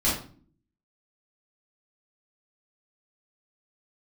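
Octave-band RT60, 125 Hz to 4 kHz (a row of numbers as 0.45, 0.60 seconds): 0.75, 0.80, 0.50, 0.40, 0.35, 0.35 seconds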